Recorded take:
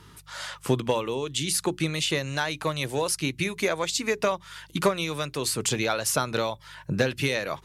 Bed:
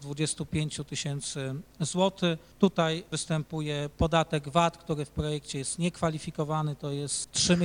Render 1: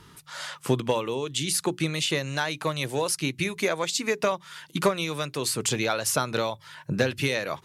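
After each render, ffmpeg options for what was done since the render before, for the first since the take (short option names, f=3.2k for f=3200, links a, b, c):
-af "bandreject=f=50:t=h:w=4,bandreject=f=100:t=h:w=4"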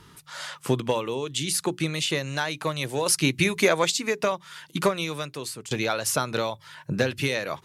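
-filter_complex "[0:a]asettb=1/sr,asplit=3[a][b][c];[a]atrim=end=3.064[d];[b]atrim=start=3.06:end=3.92,asetpts=PTS-STARTPTS,afade=t=in:d=0.004:c=qsin,afade=t=out:st=0.856:d=0.004:c=qsin,acontrast=41[e];[c]atrim=start=3.916[f];[d][e]acrossfade=d=0.004:c1=hsin:c2=qsin[g];[g][f]acrossfade=d=0.004:c1=qsin:c2=hsin,asplit=2[h][i];[h]atrim=end=5.71,asetpts=PTS-STARTPTS,afade=t=out:st=5.06:d=0.65:silence=0.149624[j];[i]atrim=start=5.71,asetpts=PTS-STARTPTS,afade=t=in:d=0.004:c=hsin:silence=0.149624[k];[j][k]concat=n=2:v=0:a=1"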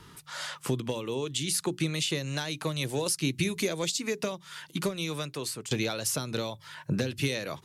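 -filter_complex "[0:a]acrossover=split=420|3000[a][b][c];[b]acompressor=threshold=-36dB:ratio=6[d];[a][d][c]amix=inputs=3:normalize=0,alimiter=limit=-17.5dB:level=0:latency=1:release=292"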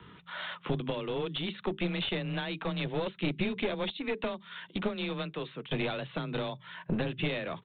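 -af "afreqshift=23,aresample=8000,aeval=exprs='clip(val(0),-1,0.0251)':c=same,aresample=44100"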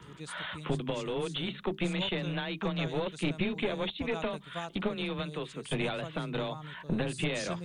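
-filter_complex "[1:a]volume=-15.5dB[a];[0:a][a]amix=inputs=2:normalize=0"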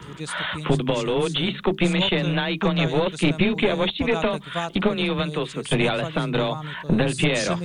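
-af "volume=11dB"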